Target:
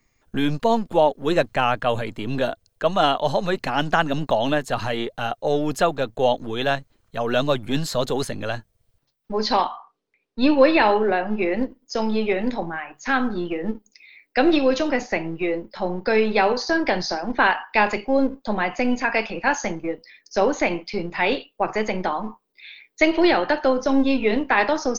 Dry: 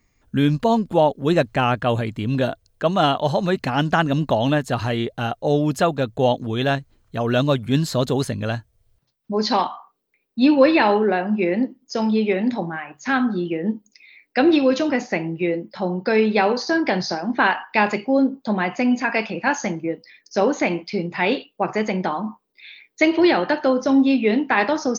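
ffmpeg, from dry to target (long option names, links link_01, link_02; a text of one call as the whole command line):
ffmpeg -i in.wav -filter_complex "[0:a]acrossover=split=330[link_01][link_02];[link_01]aeval=exprs='max(val(0),0)':channel_layout=same[link_03];[link_03][link_02]amix=inputs=2:normalize=0,asettb=1/sr,asplit=3[link_04][link_05][link_06];[link_04]atrim=end=9.384[link_07];[link_05]atrim=start=9.38:end=11.52,asetpts=PTS-STARTPTS,afade=type=in:duration=0.004:curve=qsin,afade=type=out:start_time=2.136:duration=0.004:curve=qsin,lowpass=6400[link_08];[link_06]atrim=start=11.516[link_09];[link_07][link_08]acrossfade=duration=0.004:curve1=hsin:curve2=qsin[link_10];[link_10][link_09]acrossfade=duration=0.004:curve1=qsin:curve2=hsin" out.wav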